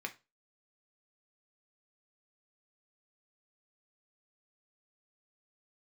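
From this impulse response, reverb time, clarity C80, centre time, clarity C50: 0.25 s, 24.5 dB, 7 ms, 16.5 dB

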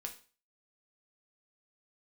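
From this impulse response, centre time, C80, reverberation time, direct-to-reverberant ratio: 12 ms, 17.0 dB, 0.35 s, 2.0 dB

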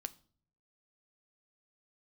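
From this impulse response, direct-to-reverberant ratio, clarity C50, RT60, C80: 11.0 dB, 21.0 dB, 0.50 s, 25.0 dB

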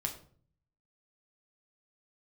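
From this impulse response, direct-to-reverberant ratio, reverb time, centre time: 2.0 dB, 0.50 s, 14 ms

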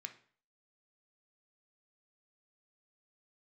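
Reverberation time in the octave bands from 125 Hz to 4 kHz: 0.50 s, 0.45 s, 0.45 s, 0.50 s, 0.45 s, 0.40 s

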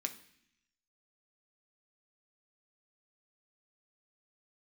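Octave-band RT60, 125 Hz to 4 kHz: 0.95 s, 0.95 s, 0.65 s, 0.65 s, 0.95 s, 0.95 s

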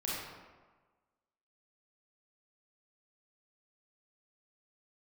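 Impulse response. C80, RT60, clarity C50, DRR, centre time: 1.0 dB, 1.4 s, -2.0 dB, -7.0 dB, 96 ms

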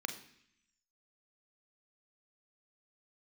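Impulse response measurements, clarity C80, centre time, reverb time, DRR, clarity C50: 14.0 dB, 13 ms, 0.70 s, 6.0 dB, 11.0 dB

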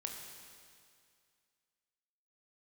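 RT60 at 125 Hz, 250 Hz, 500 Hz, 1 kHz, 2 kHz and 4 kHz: 2.2 s, 2.2 s, 2.2 s, 2.2 s, 2.2 s, 2.2 s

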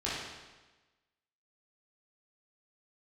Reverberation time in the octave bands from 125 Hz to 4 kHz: 1.2 s, 1.2 s, 1.2 s, 1.2 s, 1.2 s, 1.1 s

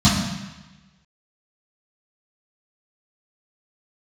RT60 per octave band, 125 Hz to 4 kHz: 1.2 s, 1.2 s, 1.0 s, 1.2 s, 1.2 s, 1.1 s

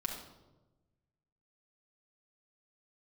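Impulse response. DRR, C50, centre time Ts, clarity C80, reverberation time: 0.0 dB, 4.0 dB, 35 ms, 7.5 dB, 1.1 s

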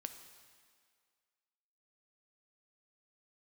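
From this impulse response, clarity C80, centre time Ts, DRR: 10.0 dB, 23 ms, 7.0 dB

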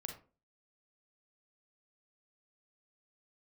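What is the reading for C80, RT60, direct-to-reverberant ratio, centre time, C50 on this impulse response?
13.0 dB, 0.35 s, 3.0 dB, 20 ms, 7.0 dB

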